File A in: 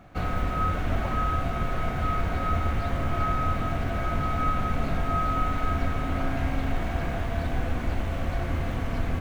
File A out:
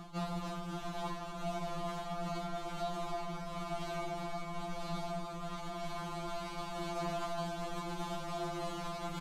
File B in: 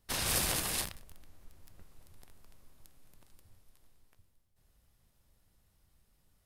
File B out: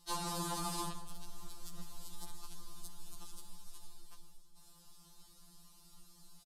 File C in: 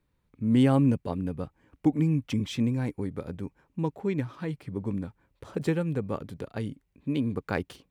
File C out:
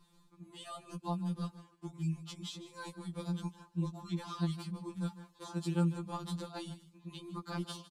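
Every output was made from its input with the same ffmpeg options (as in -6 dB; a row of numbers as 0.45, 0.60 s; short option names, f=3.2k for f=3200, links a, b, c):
-filter_complex "[0:a]areverse,acompressor=threshold=-38dB:ratio=16,areverse,equalizer=f=125:t=o:w=1:g=-5,equalizer=f=250:t=o:w=1:g=8,equalizer=f=500:t=o:w=1:g=-10,equalizer=f=1k:t=o:w=1:g=11,equalizer=f=2k:t=o:w=1:g=-11,equalizer=f=4k:t=o:w=1:g=9,equalizer=f=8k:t=o:w=1:g=7,acrossover=split=130|1500[a][b][c];[a]acompressor=threshold=-54dB:ratio=4[d];[b]acompressor=threshold=-45dB:ratio=4[e];[c]acompressor=threshold=-54dB:ratio=4[f];[d][e][f]amix=inputs=3:normalize=0,asplit=2[g][h];[h]aecho=0:1:153:0.168[i];[g][i]amix=inputs=2:normalize=0,aresample=32000,aresample=44100,afftfilt=real='re*2.83*eq(mod(b,8),0)':imag='im*2.83*eq(mod(b,8),0)':win_size=2048:overlap=0.75,volume=11dB"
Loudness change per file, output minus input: -11.5, -13.0, -10.5 LU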